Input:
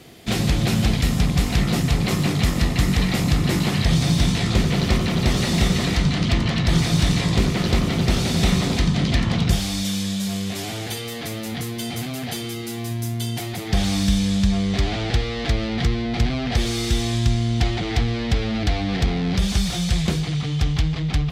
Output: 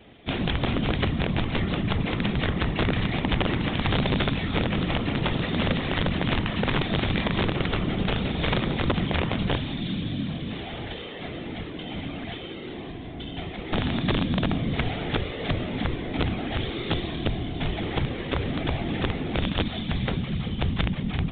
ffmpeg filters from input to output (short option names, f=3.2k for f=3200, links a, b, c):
-af "bandreject=f=57.6:t=h:w=4,bandreject=f=115.2:t=h:w=4,bandreject=f=172.8:t=h:w=4,bandreject=f=230.4:t=h:w=4,afftfilt=real='hypot(re,im)*cos(2*PI*random(0))':imag='hypot(re,im)*sin(2*PI*random(1))':win_size=512:overlap=0.75,aresample=16000,aeval=exprs='(mod(7.5*val(0)+1,2)-1)/7.5':c=same,aresample=44100,aresample=8000,aresample=44100,volume=1.5dB"